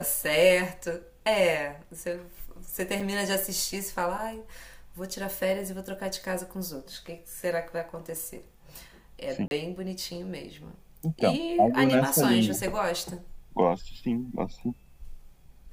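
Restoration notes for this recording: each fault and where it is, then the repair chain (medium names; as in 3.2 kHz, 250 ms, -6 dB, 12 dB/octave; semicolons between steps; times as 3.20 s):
3.00–3.01 s: dropout 5.2 ms
9.48–9.51 s: dropout 31 ms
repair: interpolate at 3.00 s, 5.2 ms; interpolate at 9.48 s, 31 ms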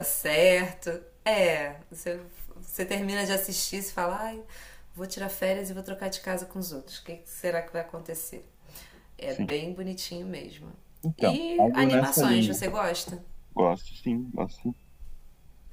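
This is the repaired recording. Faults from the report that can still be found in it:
nothing left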